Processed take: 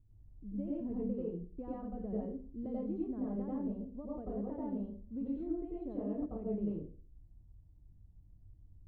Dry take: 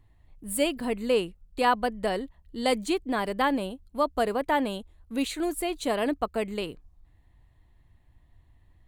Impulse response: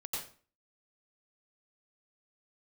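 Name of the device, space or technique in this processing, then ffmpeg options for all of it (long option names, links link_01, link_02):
television next door: -filter_complex "[0:a]acompressor=threshold=-27dB:ratio=4,lowpass=260[link_01];[1:a]atrim=start_sample=2205[link_02];[link_01][link_02]afir=irnorm=-1:irlink=0"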